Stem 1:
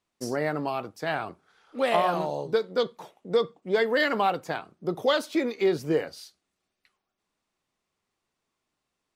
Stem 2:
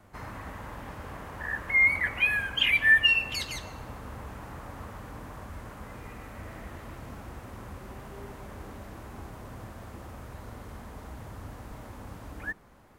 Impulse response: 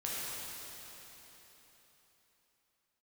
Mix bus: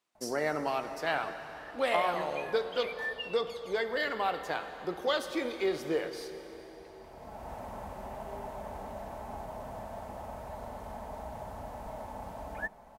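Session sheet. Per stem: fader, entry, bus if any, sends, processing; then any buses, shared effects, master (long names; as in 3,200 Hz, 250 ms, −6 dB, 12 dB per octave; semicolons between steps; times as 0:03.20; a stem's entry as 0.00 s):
−5.5 dB, 0.00 s, send −10.5 dB, high-pass filter 420 Hz 6 dB per octave; speech leveller within 4 dB 0.5 s
−3.5 dB, 0.15 s, no send, flat-topped bell 720 Hz +12.5 dB 1 octave; comb filter 4.6 ms, depth 37%; automatic ducking −16 dB, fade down 0.30 s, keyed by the first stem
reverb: on, RT60 3.9 s, pre-delay 7 ms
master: no processing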